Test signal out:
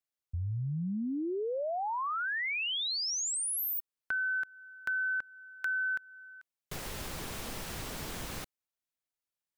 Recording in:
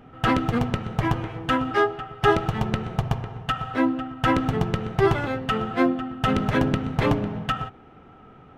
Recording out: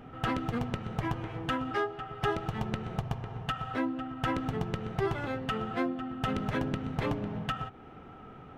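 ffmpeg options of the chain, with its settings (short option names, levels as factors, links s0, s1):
-af "acompressor=threshold=0.0158:ratio=2"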